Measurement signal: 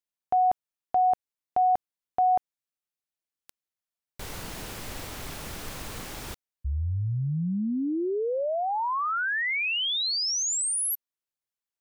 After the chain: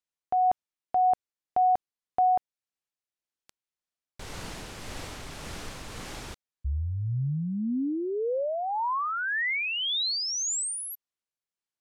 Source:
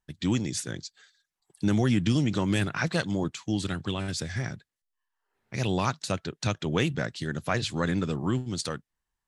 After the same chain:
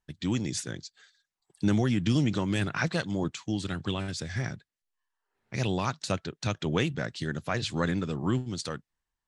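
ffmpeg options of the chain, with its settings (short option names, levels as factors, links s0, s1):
-af "lowpass=8800,tremolo=f=1.8:d=0.29"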